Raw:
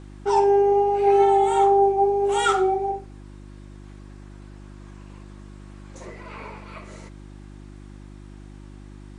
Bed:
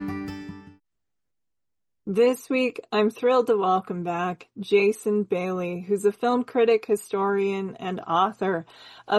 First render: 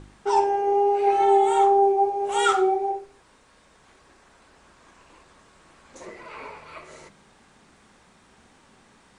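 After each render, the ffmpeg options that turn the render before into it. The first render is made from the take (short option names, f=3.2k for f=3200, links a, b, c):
-af "bandreject=f=50:t=h:w=4,bandreject=f=100:t=h:w=4,bandreject=f=150:t=h:w=4,bandreject=f=200:t=h:w=4,bandreject=f=250:t=h:w=4,bandreject=f=300:t=h:w=4,bandreject=f=350:t=h:w=4,bandreject=f=400:t=h:w=4"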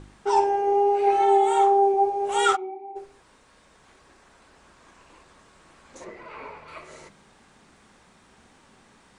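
-filter_complex "[0:a]asettb=1/sr,asplit=3[a][b][c];[a]atrim=end=1.194[d];[b]atrim=start=1.19:end=1.94,asetpts=PTS-STARTPTS,afade=t=in:d=0.004:c=qsin,afade=t=out:st=0.746:d=0.004:c=qsin,highpass=f=220:p=1[e];[c]atrim=start=1.936[f];[d][e]acrossfade=d=0.004:c1=hsin:c2=qsin[g];[g][f]acrossfade=d=0.004:c1=qsin:c2=hsin,asplit=3[h][i][j];[h]afade=t=out:st=2.55:d=0.02[k];[i]asplit=3[l][m][n];[l]bandpass=f=300:t=q:w=8,volume=0dB[o];[m]bandpass=f=870:t=q:w=8,volume=-6dB[p];[n]bandpass=f=2.24k:t=q:w=8,volume=-9dB[q];[o][p][q]amix=inputs=3:normalize=0,afade=t=in:st=2.55:d=0.02,afade=t=out:st=2.95:d=0.02[r];[j]afade=t=in:st=2.95:d=0.02[s];[k][r][s]amix=inputs=3:normalize=0,asettb=1/sr,asplit=3[t][u][v];[t]atrim=end=6.044[w];[u]atrim=start=6.04:end=6.68,asetpts=PTS-STARTPTS,afade=t=in:d=0.004:c=qsin,afade=t=out:st=0.636:d=0.004:c=qsin,lowpass=f=2.8k:p=1[x];[v]atrim=start=6.676[y];[w][x]acrossfade=d=0.004:c1=hsin:c2=qsin[z];[z][y]acrossfade=d=0.004:c1=qsin:c2=hsin"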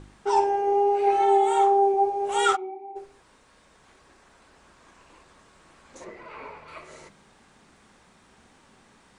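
-af "volume=-1dB"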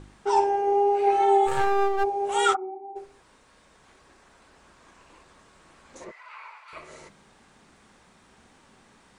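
-filter_complex "[0:a]asplit=3[a][b][c];[a]afade=t=out:st=1.46:d=0.02[d];[b]aeval=exprs='max(val(0),0)':c=same,afade=t=in:st=1.46:d=0.02,afade=t=out:st=2.03:d=0.02[e];[c]afade=t=in:st=2.03:d=0.02[f];[d][e][f]amix=inputs=3:normalize=0,asplit=3[g][h][i];[g]afade=t=out:st=2.53:d=0.02[j];[h]lowpass=f=1.5k:w=0.5412,lowpass=f=1.5k:w=1.3066,afade=t=in:st=2.53:d=0.02,afade=t=out:st=2.94:d=0.02[k];[i]afade=t=in:st=2.94:d=0.02[l];[j][k][l]amix=inputs=3:normalize=0,asettb=1/sr,asplit=3[m][n][o];[m]atrim=end=6.114[p];[n]atrim=start=6.11:end=6.73,asetpts=PTS-STARTPTS,afade=t=in:d=0.004:c=qsin,afade=t=out:st=0.616:d=0.004:c=qsin,highpass=f=940:w=0.5412,highpass=f=940:w=1.3066[q];[o]atrim=start=6.726[r];[p][q]acrossfade=d=0.004:c1=hsin:c2=qsin[s];[s][r]acrossfade=d=0.004:c1=qsin:c2=hsin"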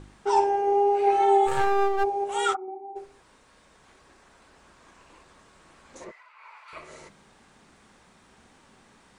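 -filter_complex "[0:a]asplit=5[a][b][c][d][e];[a]atrim=end=2.242[f];[b]atrim=start=2.238:end=2.682,asetpts=PTS-STARTPTS,volume=-3.5dB[g];[c]atrim=start=2.678:end=6.33,asetpts=PTS-STARTPTS,afade=t=out:st=3.382:d=0.27:silence=0.237137[h];[d]atrim=start=6.33:end=6.34,asetpts=PTS-STARTPTS,volume=-12.5dB[i];[e]atrim=start=6.34,asetpts=PTS-STARTPTS,afade=t=in:d=0.27:silence=0.237137[j];[f][g]acrossfade=d=0.004:c1=hsin:c2=hsin[k];[h][i][j]concat=n=3:v=0:a=1[l];[k][l]acrossfade=d=0.004:c1=hsin:c2=hsin"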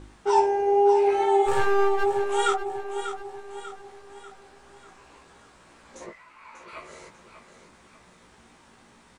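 -filter_complex "[0:a]asplit=2[a][b];[b]adelay=17,volume=-5dB[c];[a][c]amix=inputs=2:normalize=0,aecho=1:1:592|1184|1776|2368|2960:0.316|0.145|0.0669|0.0308|0.0142"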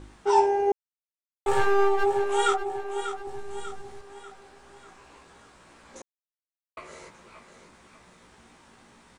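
-filter_complex "[0:a]asettb=1/sr,asplit=3[a][b][c];[a]atrim=end=3.274[d];[b]atrim=start=3.27:end=4.01,asetpts=PTS-STARTPTS,afade=t=in:d=0.004:c=qsin,afade=t=out:st=0.736:d=0.004:c=qsin,bass=f=250:g=11,treble=f=4k:g=4[e];[c]atrim=start=4.006[f];[d][e]acrossfade=d=0.004:c1=hsin:c2=qsin[g];[g][f]acrossfade=d=0.004:c1=qsin:c2=hsin,asplit=5[h][i][j][k][l];[h]atrim=end=0.72,asetpts=PTS-STARTPTS,afade=t=out:st=0.716:d=0.004:c=hsin[m];[i]atrim=start=0.72:end=1.46,asetpts=PTS-STARTPTS,volume=0[n];[j]atrim=start=1.46:end=6.02,asetpts=PTS-STARTPTS,afade=t=in:d=0.004:c=hsin,afade=t=out:st=4.556:d=0.004:c=hsin[o];[k]atrim=start=6.02:end=6.77,asetpts=PTS-STARTPTS,volume=0[p];[l]atrim=start=6.77,asetpts=PTS-STARTPTS,afade=t=in:d=0.004:c=hsin[q];[m][n][o][p][q]concat=n=5:v=0:a=1"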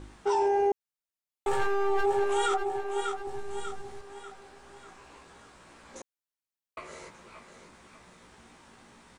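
-af "alimiter=limit=-18.5dB:level=0:latency=1:release=11"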